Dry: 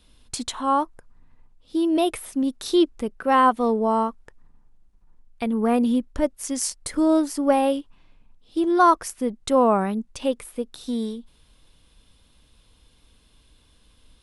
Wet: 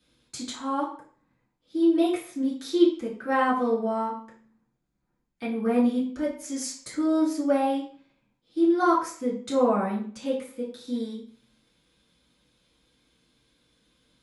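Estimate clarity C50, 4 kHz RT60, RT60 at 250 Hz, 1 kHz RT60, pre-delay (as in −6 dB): 6.5 dB, 0.40 s, 0.45 s, 0.45 s, 3 ms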